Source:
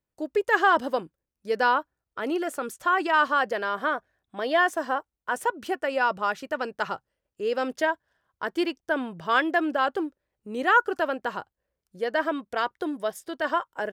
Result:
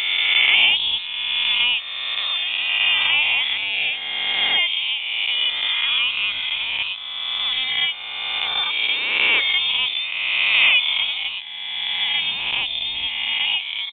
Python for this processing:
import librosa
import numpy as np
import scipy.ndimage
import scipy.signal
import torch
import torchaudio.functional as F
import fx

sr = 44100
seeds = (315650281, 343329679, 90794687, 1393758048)

y = fx.spec_swells(x, sr, rise_s=2.36)
y = fx.freq_invert(y, sr, carrier_hz=3900)